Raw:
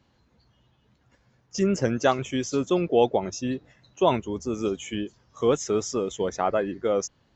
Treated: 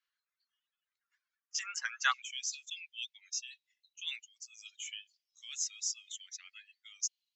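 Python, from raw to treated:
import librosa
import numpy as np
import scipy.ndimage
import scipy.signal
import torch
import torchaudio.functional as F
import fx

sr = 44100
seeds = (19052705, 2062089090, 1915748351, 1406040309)

y = fx.steep_highpass(x, sr, hz=fx.steps((0.0, 1300.0), (2.12, 2400.0)), slope=36)
y = fx.dereverb_blind(y, sr, rt60_s=1.3)
y = fx.band_widen(y, sr, depth_pct=40)
y = y * 10.0 ** (-1.5 / 20.0)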